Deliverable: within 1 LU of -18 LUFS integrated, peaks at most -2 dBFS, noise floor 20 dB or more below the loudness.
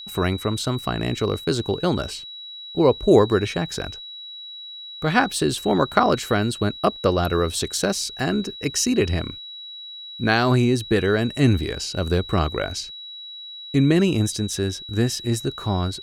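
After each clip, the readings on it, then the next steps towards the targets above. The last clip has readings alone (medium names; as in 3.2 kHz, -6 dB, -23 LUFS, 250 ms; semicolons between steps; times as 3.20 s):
steady tone 3.9 kHz; tone level -35 dBFS; loudness -22.0 LUFS; peak level -2.5 dBFS; loudness target -18.0 LUFS
-> band-stop 3.9 kHz, Q 30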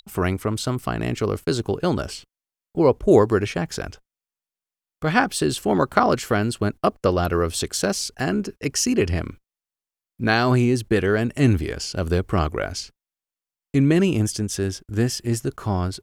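steady tone not found; loudness -22.0 LUFS; peak level -2.5 dBFS; loudness target -18.0 LUFS
-> trim +4 dB; peak limiter -2 dBFS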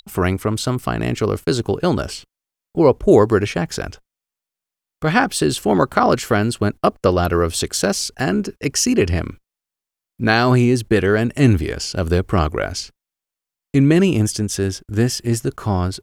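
loudness -18.5 LUFS; peak level -2.0 dBFS; noise floor -87 dBFS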